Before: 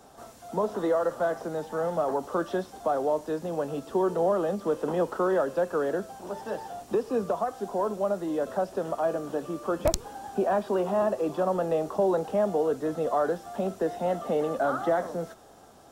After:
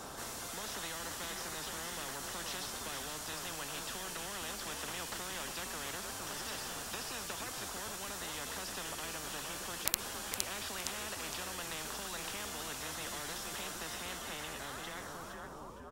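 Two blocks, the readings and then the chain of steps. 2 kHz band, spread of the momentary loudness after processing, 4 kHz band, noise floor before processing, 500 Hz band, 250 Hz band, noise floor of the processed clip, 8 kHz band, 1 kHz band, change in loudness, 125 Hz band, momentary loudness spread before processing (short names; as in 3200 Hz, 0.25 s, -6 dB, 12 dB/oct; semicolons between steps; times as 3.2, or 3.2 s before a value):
-1.0 dB, 4 LU, +8.5 dB, -52 dBFS, -22.5 dB, -17.5 dB, -46 dBFS, +7.5 dB, -13.0 dB, -11.0 dB, -12.0 dB, 8 LU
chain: ending faded out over 2.46 s; frequency-shifting echo 0.463 s, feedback 33%, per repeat -130 Hz, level -11 dB; spectral compressor 10:1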